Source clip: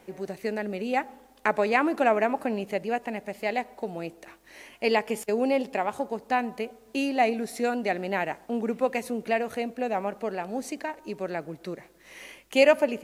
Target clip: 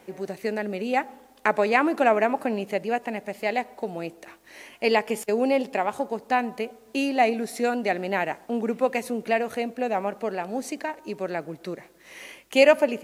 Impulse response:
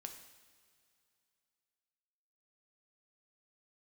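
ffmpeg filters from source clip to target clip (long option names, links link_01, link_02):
-af "lowshelf=frequency=61:gain=-11.5,volume=2.5dB"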